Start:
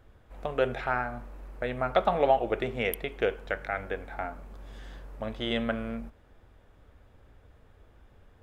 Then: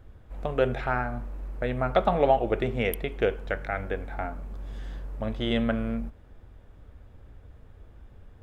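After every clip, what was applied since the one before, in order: low shelf 300 Hz +8.5 dB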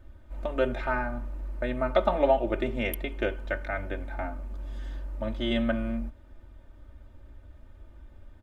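comb 3.3 ms, depth 86%; gain -3.5 dB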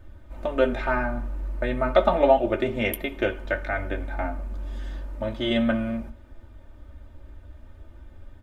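flange 0.35 Hz, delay 9.7 ms, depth 5 ms, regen -49%; on a send at -20.5 dB: reverb RT60 1.0 s, pre-delay 60 ms; on the sum: gain +8.5 dB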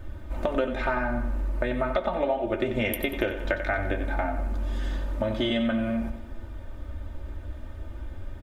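compressor 12:1, threshold -30 dBFS, peak gain reduction 18.5 dB; feedback echo 92 ms, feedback 43%, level -10 dB; gain +7.5 dB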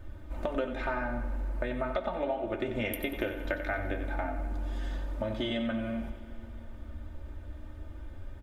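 FDN reverb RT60 3.9 s, high-frequency decay 0.75×, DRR 13.5 dB; gain -6 dB

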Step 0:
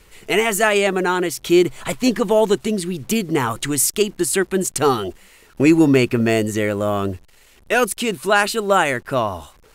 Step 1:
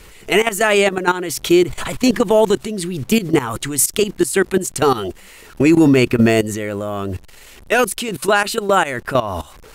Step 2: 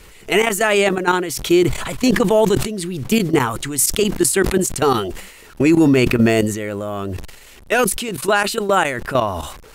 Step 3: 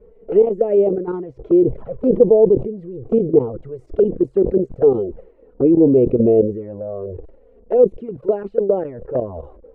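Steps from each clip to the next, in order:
level quantiser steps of 18 dB; maximiser +16 dB; gain -3.5 dB
sustainer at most 76 dB/s; gain -1.5 dB
synth low-pass 490 Hz, resonance Q 5.1; envelope flanger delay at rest 4.8 ms, full sweep at -7 dBFS; gain -4.5 dB

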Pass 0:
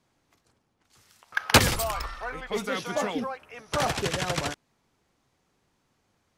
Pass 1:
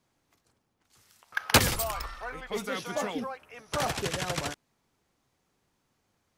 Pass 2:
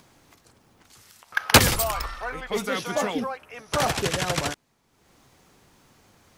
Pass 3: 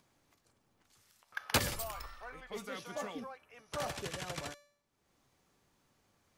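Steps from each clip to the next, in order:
high shelf 11000 Hz +7.5 dB; gain -3.5 dB
upward compressor, threshold -52 dBFS; gain +6 dB
resonator 580 Hz, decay 0.57 s, mix 70%; gain -5.5 dB

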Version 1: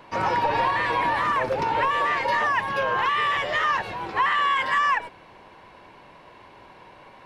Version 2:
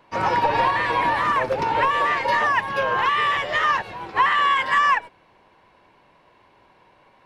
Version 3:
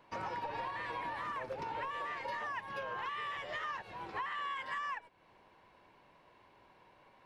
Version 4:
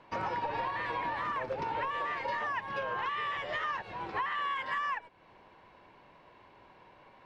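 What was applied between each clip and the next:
upward expander 1.5:1, over -43 dBFS; gain +4.5 dB
compressor 3:1, threshold -34 dBFS, peak gain reduction 14.5 dB; gain -7.5 dB
air absorption 79 m; gain +6 dB

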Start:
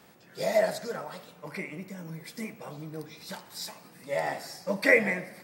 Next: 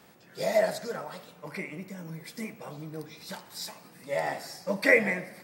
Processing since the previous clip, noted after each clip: nothing audible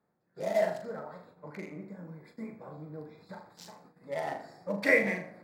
Wiener smoothing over 15 samples; flutter echo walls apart 6.8 m, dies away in 0.36 s; gate -52 dBFS, range -16 dB; gain -4 dB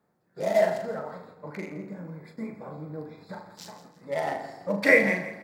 feedback echo 0.166 s, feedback 35%, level -14 dB; gain +5.5 dB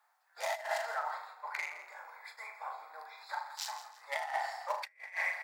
elliptic high-pass 800 Hz, stop band 80 dB; negative-ratio compressor -37 dBFS, ratio -0.5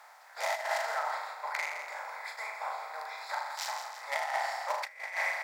per-bin compression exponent 0.6

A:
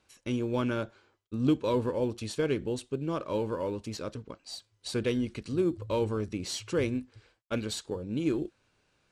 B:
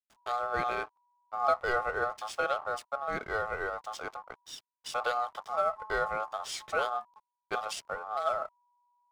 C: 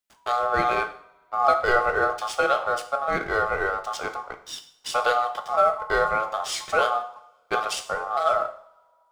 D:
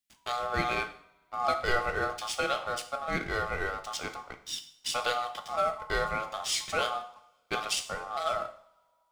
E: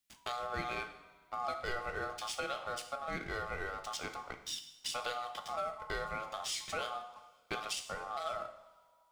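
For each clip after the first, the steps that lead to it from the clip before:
backlash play -44.5 dBFS; ring modulator 970 Hz; gain +1 dB
two-slope reverb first 0.55 s, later 2.1 s, from -27 dB, DRR 6.5 dB; gain +8 dB
band shelf 780 Hz -9 dB 2.4 oct
compressor 2.5:1, threshold -43 dBFS, peak gain reduction 14.5 dB; gain +2.5 dB

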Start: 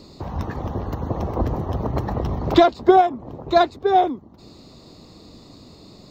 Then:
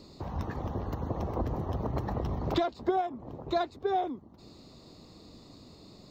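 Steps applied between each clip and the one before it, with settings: compressor 3:1, threshold -20 dBFS, peak gain reduction 9.5 dB; gain -7 dB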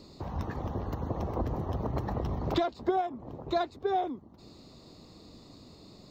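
nothing audible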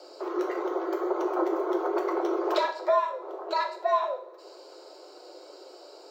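frequency shift +280 Hz; two-slope reverb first 0.47 s, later 2.2 s, from -26 dB, DRR 2 dB; gain +2 dB

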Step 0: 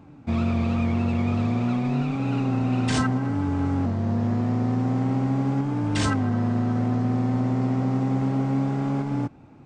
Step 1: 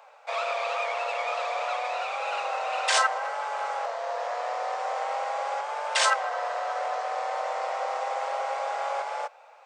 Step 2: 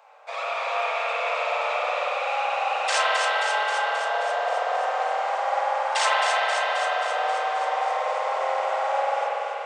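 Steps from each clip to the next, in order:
steep high-pass 510 Hz 72 dB/oct; gain +6.5 dB
thinning echo 0.266 s, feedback 71%, high-pass 1100 Hz, level -5 dB; spring tank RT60 3.7 s, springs 47 ms, chirp 70 ms, DRR -5.5 dB; gain -2.5 dB

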